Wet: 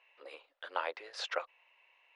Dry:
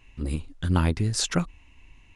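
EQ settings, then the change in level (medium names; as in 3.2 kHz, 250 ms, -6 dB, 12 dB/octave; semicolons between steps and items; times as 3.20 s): elliptic high-pass 520 Hz, stop band 60 dB; distance through air 320 m; peaking EQ 1.1 kHz -3.5 dB 2.3 oct; +1.0 dB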